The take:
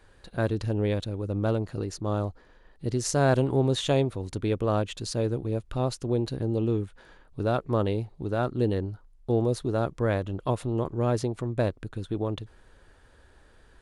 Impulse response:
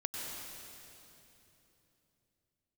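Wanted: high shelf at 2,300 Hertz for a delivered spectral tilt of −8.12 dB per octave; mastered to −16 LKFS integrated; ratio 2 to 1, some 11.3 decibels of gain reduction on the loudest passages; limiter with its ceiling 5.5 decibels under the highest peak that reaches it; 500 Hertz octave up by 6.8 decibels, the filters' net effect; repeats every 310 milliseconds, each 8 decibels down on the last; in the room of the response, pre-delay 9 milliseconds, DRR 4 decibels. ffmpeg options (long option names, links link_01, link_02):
-filter_complex "[0:a]equalizer=frequency=500:width_type=o:gain=8.5,highshelf=frequency=2300:gain=-4,acompressor=threshold=-36dB:ratio=2,alimiter=level_in=0.5dB:limit=-24dB:level=0:latency=1,volume=-0.5dB,aecho=1:1:310|620|930|1240|1550:0.398|0.159|0.0637|0.0255|0.0102,asplit=2[link_01][link_02];[1:a]atrim=start_sample=2205,adelay=9[link_03];[link_02][link_03]afir=irnorm=-1:irlink=0,volume=-6.5dB[link_04];[link_01][link_04]amix=inputs=2:normalize=0,volume=16.5dB"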